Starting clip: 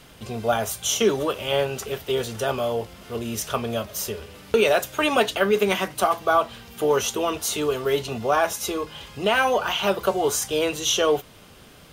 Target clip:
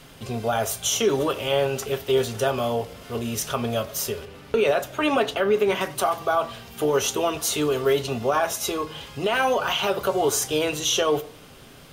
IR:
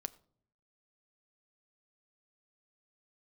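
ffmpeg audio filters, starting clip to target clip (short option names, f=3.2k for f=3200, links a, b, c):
-filter_complex "[0:a]asettb=1/sr,asplit=3[a][b][c];[a]atrim=end=4.254[d];[b]atrim=start=4.25:end=5.81,asetpts=PTS-STARTPTS,afade=t=in:d=0.004:c=qsin,afade=t=out:st=1.556:d=0.004:c=qsin,highshelf=f=3.9k:g=-9[e];[c]atrim=start=5.806[f];[d][e]acrossfade=d=0.004:c1=hsin:c2=qsin[g];[g][f]acrossfade=d=0.004:c1=qsin:c2=hsin,alimiter=limit=-14dB:level=0:latency=1:release=64[h];[1:a]atrim=start_sample=2205,asetrate=41895,aresample=44100[i];[h][i]afir=irnorm=-1:irlink=0,volume=3.5dB"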